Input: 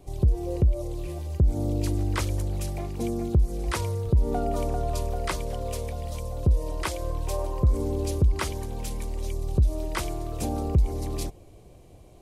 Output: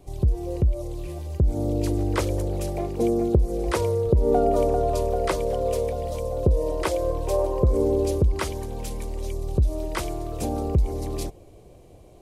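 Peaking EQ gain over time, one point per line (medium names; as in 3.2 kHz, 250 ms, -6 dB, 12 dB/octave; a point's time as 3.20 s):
peaking EQ 480 Hz 1.3 oct
1.09 s +0.5 dB
2.24 s +12 dB
7.91 s +12 dB
8.46 s +4.5 dB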